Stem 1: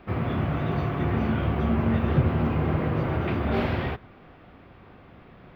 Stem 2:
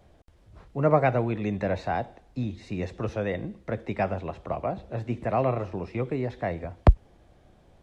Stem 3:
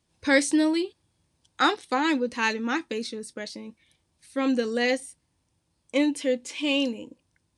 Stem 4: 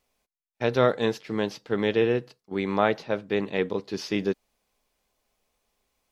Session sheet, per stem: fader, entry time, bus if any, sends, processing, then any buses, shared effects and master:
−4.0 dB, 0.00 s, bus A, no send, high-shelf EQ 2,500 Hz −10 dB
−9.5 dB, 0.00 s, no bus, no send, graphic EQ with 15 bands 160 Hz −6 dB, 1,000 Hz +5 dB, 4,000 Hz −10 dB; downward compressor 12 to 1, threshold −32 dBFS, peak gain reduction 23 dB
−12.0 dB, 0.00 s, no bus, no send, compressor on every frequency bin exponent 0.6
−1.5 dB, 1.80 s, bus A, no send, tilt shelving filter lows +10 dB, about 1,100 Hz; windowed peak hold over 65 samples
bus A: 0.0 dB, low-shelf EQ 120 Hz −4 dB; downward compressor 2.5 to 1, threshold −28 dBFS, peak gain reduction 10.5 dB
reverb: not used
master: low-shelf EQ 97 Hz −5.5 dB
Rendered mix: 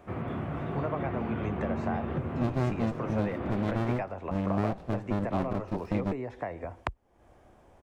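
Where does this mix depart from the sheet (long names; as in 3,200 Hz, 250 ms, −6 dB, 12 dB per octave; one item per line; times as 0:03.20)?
stem 2 −9.5 dB → +1.5 dB
stem 3: muted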